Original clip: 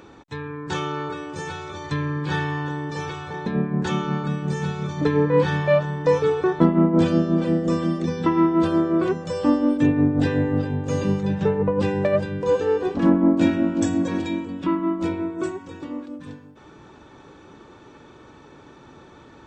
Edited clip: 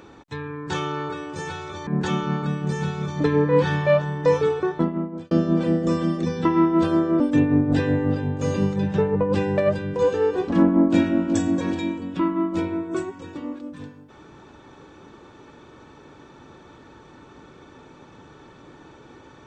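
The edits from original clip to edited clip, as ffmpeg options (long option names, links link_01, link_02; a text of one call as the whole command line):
ffmpeg -i in.wav -filter_complex "[0:a]asplit=4[link_01][link_02][link_03][link_04];[link_01]atrim=end=1.872[link_05];[link_02]atrim=start=3.678:end=7.12,asetpts=PTS-STARTPTS,afade=type=out:start_time=2.522:duration=0.92[link_06];[link_03]atrim=start=7.12:end=9.012,asetpts=PTS-STARTPTS,afade=type=in:duration=0.004:curve=hsin[link_07];[link_04]atrim=start=9.668[link_08];[link_06][link_07]concat=n=2:v=0:a=1[link_09];[link_05][link_09]acrossfade=duration=0.004:curve1=hsin:curve2=hsin[link_10];[link_10][link_08]acrossfade=duration=0.004:curve1=hsin:curve2=hsin" out.wav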